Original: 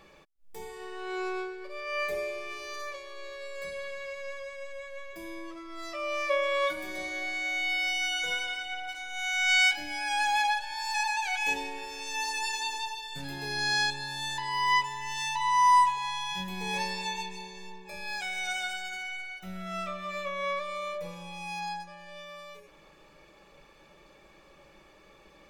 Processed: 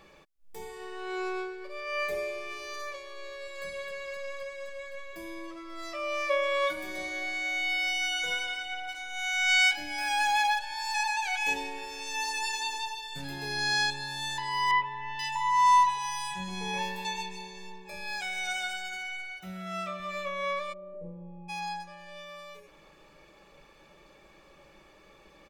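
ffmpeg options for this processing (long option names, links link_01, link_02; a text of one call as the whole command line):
ffmpeg -i in.wav -filter_complex "[0:a]asplit=2[link_01][link_02];[link_02]afade=type=in:start_time=3.21:duration=0.01,afade=type=out:start_time=3.65:duration=0.01,aecho=0:1:260|520|780|1040|1300|1560|1820|2080|2340|2600|2860|3120:0.501187|0.40095|0.32076|0.256608|0.205286|0.164229|0.131383|0.105107|0.0840853|0.0672682|0.0538146|0.0430517[link_03];[link_01][link_03]amix=inputs=2:normalize=0,asettb=1/sr,asplit=3[link_04][link_05][link_06];[link_04]atrim=end=9.984[link_07];[link_05]atrim=start=9.98:end=10.59,asetpts=PTS-STARTPTS,afade=type=in:duration=0.004:curve=qsin,afade=type=out:start_time=0.606:duration=0.004:curve=qsin,aeval=exprs='val(0)+0.5*0.01*sgn(val(0))':channel_layout=same[link_08];[link_06]atrim=start=10.586[link_09];[link_07][link_08]acrossfade=duration=0.004:curve1=hsin:curve2=qsin[link_10];[link_10][link_09]acrossfade=duration=0.004:curve1=qsin:curve2=hsin,asettb=1/sr,asplit=3[link_11][link_12][link_13];[link_11]atrim=end=14.714[link_14];[link_12]atrim=start=14.71:end=17.05,asetpts=PTS-STARTPTS,afade=type=in:duration=0.004:curve=qsin,afade=type=out:start_time=2.336:duration=0.004:curve=qsin,acrossover=split=3100[link_15][link_16];[link_16]adelay=480[link_17];[link_15][link_17]amix=inputs=2:normalize=0,atrim=end_sample=103194[link_18];[link_13]atrim=start=17.046[link_19];[link_14][link_18]acrossfade=duration=0.004:curve1=hsin:curve2=qsin[link_20];[link_20][link_19]acrossfade=duration=0.004:curve1=qsin:curve2=hsin,asettb=1/sr,asplit=3[link_21][link_22][link_23];[link_21]atrim=end=19.404[link_24];[link_22]atrim=start=19.4:end=20,asetpts=PTS-STARTPTS,afade=type=in:duration=0.004:curve=qsin,afade=type=out:start_time=0.596:duration=0.004:curve=qsin,highpass=67[link_25];[link_23]atrim=start=19.996[link_26];[link_24][link_25]acrossfade=duration=0.004:curve1=hsin:curve2=qsin[link_27];[link_27][link_26]acrossfade=duration=0.004:curve1=qsin:curve2=hsin,asplit=3[link_28][link_29][link_30];[link_28]afade=type=out:start_time=20.72:duration=0.02[link_31];[link_29]lowpass=frequency=360:width_type=q:width=1.6,afade=type=in:start_time=20.72:duration=0.02,afade=type=out:start_time=21.48:duration=0.02[link_32];[link_30]afade=type=in:start_time=21.48:duration=0.02[link_33];[link_31][link_32][link_33]amix=inputs=3:normalize=0" out.wav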